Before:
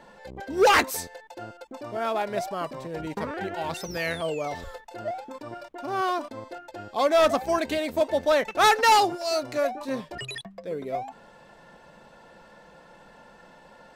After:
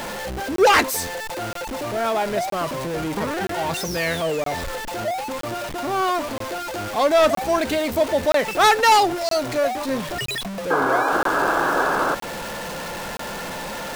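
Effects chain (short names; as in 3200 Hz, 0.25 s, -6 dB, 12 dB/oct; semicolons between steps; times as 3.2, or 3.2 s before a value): zero-crossing step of -28 dBFS; painted sound noise, 10.7–12.15, 260–1700 Hz -23 dBFS; crackling interface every 0.97 s, samples 1024, zero, from 0.56; gain +2.5 dB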